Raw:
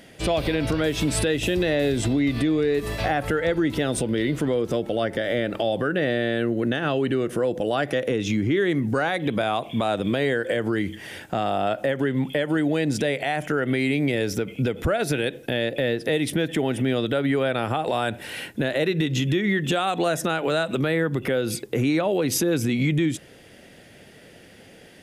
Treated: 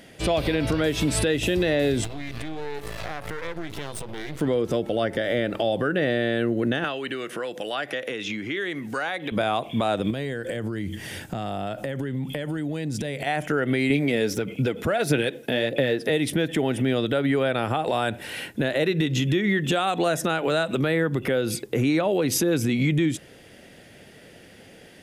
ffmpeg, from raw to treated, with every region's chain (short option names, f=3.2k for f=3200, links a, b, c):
-filter_complex "[0:a]asettb=1/sr,asplit=3[a][b][c];[a]atrim=end=2.044[d];[b]atrim=start=2.04:end=4.41,asetpts=PTS-STARTPTS,afade=t=in:d=0.004:c=qsin,afade=t=out:st=2.366:d=0.004:c=qsin,equalizer=f=240:w=3:g=-13.5,acompressor=threshold=-26dB:ratio=3:attack=3.2:release=140:knee=1:detection=peak,aeval=exprs='max(val(0),0)':c=same[e];[c]atrim=start=4.406[f];[d][e]acrossfade=d=0.004:c1=hsin:c2=qsin[g];[g][f]acrossfade=d=0.004:c1=qsin:c2=hsin,asettb=1/sr,asplit=3[h][i][j];[h]atrim=end=6.844[k];[i]atrim=start=6.84:end=9.32,asetpts=PTS-STARTPTS,afade=t=in:d=0.004:c=qsin,afade=t=out:st=2.476:d=0.004:c=qsin,highpass=150,tiltshelf=f=860:g=-7.5,acrossover=split=1100|3600[l][m][n];[l]acompressor=threshold=-29dB:ratio=4[o];[m]acompressor=threshold=-31dB:ratio=4[p];[n]acompressor=threshold=-48dB:ratio=4[q];[o][p][q]amix=inputs=3:normalize=0[r];[j]atrim=start=9.316[s];[k][r]acrossfade=d=0.004:c1=hsin:c2=qsin[t];[t][s]acrossfade=d=0.004:c1=qsin:c2=hsin,asettb=1/sr,asplit=3[u][v][w];[u]atrim=end=10.104[x];[v]atrim=start=10.1:end=13.27,asetpts=PTS-STARTPTS,afade=t=in:d=0.004:c=qsin,afade=t=out:st=3.166:d=0.004:c=qsin,bass=f=250:g=9,treble=f=4k:g=6,acompressor=threshold=-26dB:ratio=5:attack=3.2:release=140:knee=1:detection=peak[y];[w]atrim=start=13.266[z];[x][y]acrossfade=d=0.004:c1=hsin:c2=qsin[aa];[aa][z]acrossfade=d=0.004:c1=qsin:c2=hsin,asettb=1/sr,asplit=3[ab][ac][ad];[ab]atrim=end=13.904[ae];[ac]atrim=start=13.9:end=16.1,asetpts=PTS-STARTPTS,afade=t=in:d=0.004:c=qsin,afade=t=out:st=2.196:d=0.004:c=qsin,highpass=100,aphaser=in_gain=1:out_gain=1:delay=4.8:decay=0.35:speed=1.6:type=sinusoidal[af];[ad]atrim=start=16.096[ag];[ae][af]acrossfade=d=0.004:c1=hsin:c2=qsin[ah];[ah][ag]acrossfade=d=0.004:c1=qsin:c2=hsin"